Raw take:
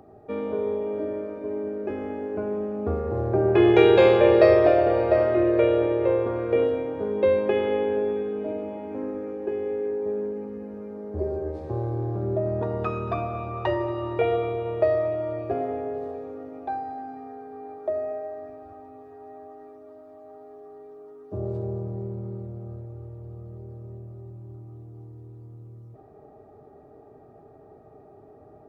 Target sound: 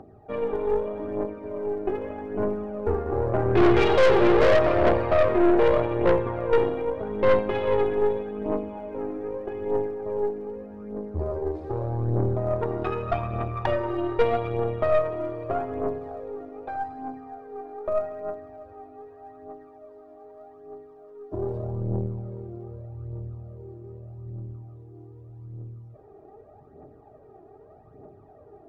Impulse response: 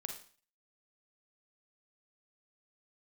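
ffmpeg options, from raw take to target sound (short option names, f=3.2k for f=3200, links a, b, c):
-af "highshelf=f=4.2k:g=-7.5,aphaser=in_gain=1:out_gain=1:delay=3:decay=0.58:speed=0.82:type=triangular,aeval=exprs='(tanh(7.94*val(0)+0.75)-tanh(0.75))/7.94':c=same,volume=3dB"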